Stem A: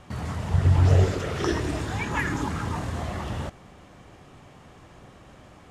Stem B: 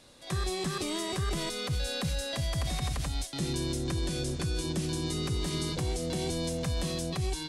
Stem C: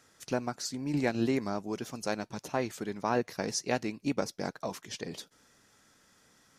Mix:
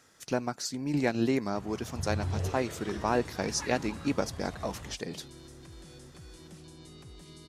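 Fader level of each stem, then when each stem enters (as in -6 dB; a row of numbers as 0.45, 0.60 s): -14.5, -18.0, +1.5 dB; 1.45, 1.75, 0.00 s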